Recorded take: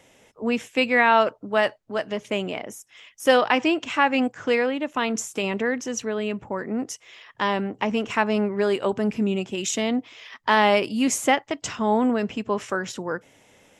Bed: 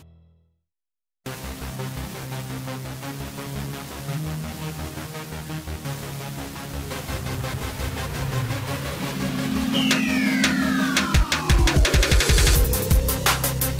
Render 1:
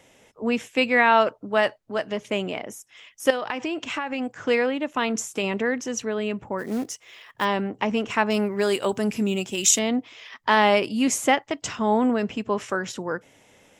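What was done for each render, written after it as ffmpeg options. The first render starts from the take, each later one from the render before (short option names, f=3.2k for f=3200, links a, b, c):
-filter_complex "[0:a]asettb=1/sr,asplit=3[a][b][c];[a]atrim=end=3.304[d];[b]atrim=start=3.3:end=4.36,asetpts=PTS-STARTPTS,afade=t=in:d=0.004:c=qsin,afade=t=out:st=1.056:d=0.004:c=qsin,acompressor=threshold=-24dB:ratio=6:attack=3.2:release=140:knee=1:detection=peak[e];[c]atrim=start=4.356[f];[d][e]acrossfade=d=0.004:c1=hsin:c2=qsin[g];[g][f]acrossfade=d=0.004:c1=qsin:c2=hsin,asplit=3[h][i][j];[h]afade=t=out:st=6.58:d=0.02[k];[i]acrusher=bits=5:mode=log:mix=0:aa=0.000001,afade=t=in:st=6.58:d=0.02,afade=t=out:st=7.44:d=0.02[l];[j]afade=t=in:st=7.44:d=0.02[m];[k][l][m]amix=inputs=3:normalize=0,asettb=1/sr,asplit=3[n][o][p];[n]atrim=end=8.304[q];[o]atrim=start=8.3:end=9.79,asetpts=PTS-STARTPTS,afade=t=in:d=0.004:c=qsin,afade=t=out:st=1.486:d=0.004:c=qsin,aemphasis=mode=production:type=75fm[r];[p]atrim=start=9.786[s];[q][r]acrossfade=d=0.004:c1=hsin:c2=qsin[t];[t][s]acrossfade=d=0.004:c1=qsin:c2=hsin"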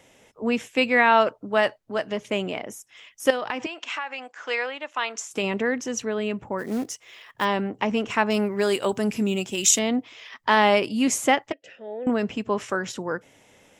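-filter_complex "[0:a]asettb=1/sr,asplit=3[a][b][c];[a]atrim=end=3.664[d];[b]atrim=start=3.66:end=5.31,asetpts=PTS-STARTPTS,afade=t=in:d=0.004:c=qsin,afade=t=out:st=1.646:d=0.004:c=qsin,highpass=770,lowpass=6.8k[e];[c]atrim=start=5.306[f];[d][e]acrossfade=d=0.004:c1=hsin:c2=qsin[g];[g][f]acrossfade=d=0.004:c1=qsin:c2=hsin,asettb=1/sr,asplit=3[h][i][j];[h]atrim=end=11.524[k];[i]atrim=start=11.52:end=12.07,asetpts=PTS-STARTPTS,afade=t=in:d=0.004:c=qsin,afade=t=out:st=0.546:d=0.004:c=qsin,asplit=3[l][m][n];[l]bandpass=f=530:t=q:w=8,volume=0dB[o];[m]bandpass=f=1.84k:t=q:w=8,volume=-6dB[p];[n]bandpass=f=2.48k:t=q:w=8,volume=-9dB[q];[o][p][q]amix=inputs=3:normalize=0[r];[j]atrim=start=12.066[s];[k][r]acrossfade=d=0.004:c1=hsin:c2=qsin[t];[t][s]acrossfade=d=0.004:c1=qsin:c2=hsin"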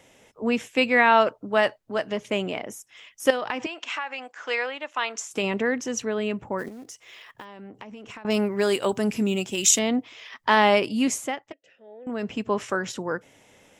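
-filter_complex "[0:a]asettb=1/sr,asplit=3[a][b][c];[a]atrim=end=6.684[d];[b]atrim=start=6.68:end=8.25,asetpts=PTS-STARTPTS,afade=t=in:d=0.004:c=qsin,afade=t=out:st=1.566:d=0.004:c=qsin,acompressor=threshold=-37dB:ratio=16:attack=3.2:release=140:knee=1:detection=peak[e];[c]atrim=start=8.246[f];[d][e]acrossfade=d=0.004:c1=hsin:c2=qsin[g];[g][f]acrossfade=d=0.004:c1=qsin:c2=hsin,asplit=3[h][i][j];[h]atrim=end=11.32,asetpts=PTS-STARTPTS,afade=t=out:st=10.99:d=0.33:silence=0.281838[k];[i]atrim=start=11.32:end=12.07,asetpts=PTS-STARTPTS,volume=-11dB[l];[j]atrim=start=12.07,asetpts=PTS-STARTPTS,afade=t=in:d=0.33:silence=0.281838[m];[k][l][m]concat=n=3:v=0:a=1"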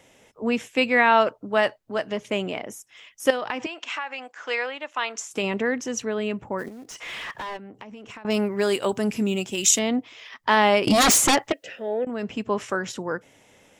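-filter_complex "[0:a]asplit=3[a][b][c];[a]afade=t=out:st=6.89:d=0.02[d];[b]asplit=2[e][f];[f]highpass=f=720:p=1,volume=30dB,asoftclip=type=tanh:threshold=-23.5dB[g];[e][g]amix=inputs=2:normalize=0,lowpass=f=2.1k:p=1,volume=-6dB,afade=t=in:st=6.89:d=0.02,afade=t=out:st=7.56:d=0.02[h];[c]afade=t=in:st=7.56:d=0.02[i];[d][h][i]amix=inputs=3:normalize=0,asettb=1/sr,asplit=3[j][k][l];[j]atrim=end=10.874[m];[k]atrim=start=10.87:end=12.05,asetpts=PTS-STARTPTS,afade=t=in:d=0.004:c=qsin,afade=t=out:st=1.176:d=0.004:c=qsin,aeval=exprs='0.211*sin(PI/2*5.62*val(0)/0.211)':c=same[n];[l]atrim=start=12.046[o];[m][n]acrossfade=d=0.004:c1=hsin:c2=qsin[p];[p][o]acrossfade=d=0.004:c1=qsin:c2=hsin"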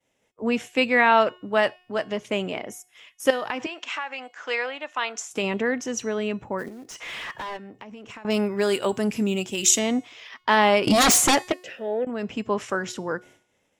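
-af "agate=range=-33dB:threshold=-45dB:ratio=3:detection=peak,bandreject=f=362.8:t=h:w=4,bandreject=f=725.6:t=h:w=4,bandreject=f=1.0884k:t=h:w=4,bandreject=f=1.4512k:t=h:w=4,bandreject=f=1.814k:t=h:w=4,bandreject=f=2.1768k:t=h:w=4,bandreject=f=2.5396k:t=h:w=4,bandreject=f=2.9024k:t=h:w=4,bandreject=f=3.2652k:t=h:w=4,bandreject=f=3.628k:t=h:w=4,bandreject=f=3.9908k:t=h:w=4,bandreject=f=4.3536k:t=h:w=4,bandreject=f=4.7164k:t=h:w=4,bandreject=f=5.0792k:t=h:w=4,bandreject=f=5.442k:t=h:w=4,bandreject=f=5.8048k:t=h:w=4,bandreject=f=6.1676k:t=h:w=4,bandreject=f=6.5304k:t=h:w=4,bandreject=f=6.8932k:t=h:w=4,bandreject=f=7.256k:t=h:w=4,bandreject=f=7.6188k:t=h:w=4,bandreject=f=7.9816k:t=h:w=4,bandreject=f=8.3444k:t=h:w=4,bandreject=f=8.7072k:t=h:w=4,bandreject=f=9.07k:t=h:w=4,bandreject=f=9.4328k:t=h:w=4,bandreject=f=9.7956k:t=h:w=4,bandreject=f=10.1584k:t=h:w=4,bandreject=f=10.5212k:t=h:w=4,bandreject=f=10.884k:t=h:w=4,bandreject=f=11.2468k:t=h:w=4,bandreject=f=11.6096k:t=h:w=4,bandreject=f=11.9724k:t=h:w=4,bandreject=f=12.3352k:t=h:w=4"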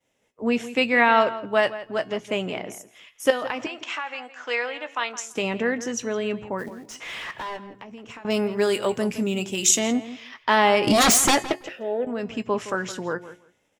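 -filter_complex "[0:a]asplit=2[a][b];[b]adelay=17,volume=-13dB[c];[a][c]amix=inputs=2:normalize=0,asplit=2[d][e];[e]adelay=166,lowpass=f=3k:p=1,volume=-14dB,asplit=2[f][g];[g]adelay=166,lowpass=f=3k:p=1,volume=0.16[h];[d][f][h]amix=inputs=3:normalize=0"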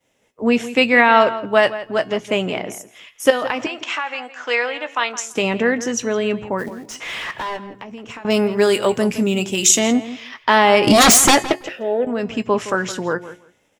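-af "volume=6.5dB,alimiter=limit=-1dB:level=0:latency=1"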